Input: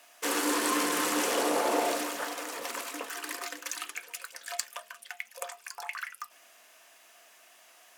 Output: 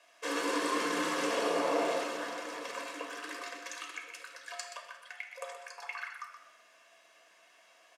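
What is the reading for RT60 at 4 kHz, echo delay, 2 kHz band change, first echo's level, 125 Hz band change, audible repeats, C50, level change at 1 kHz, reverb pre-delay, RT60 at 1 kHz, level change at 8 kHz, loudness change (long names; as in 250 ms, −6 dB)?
0.75 s, 125 ms, −2.5 dB, −9.0 dB, can't be measured, 1, 4.0 dB, −3.0 dB, 6 ms, 1.1 s, −10.0 dB, −4.0 dB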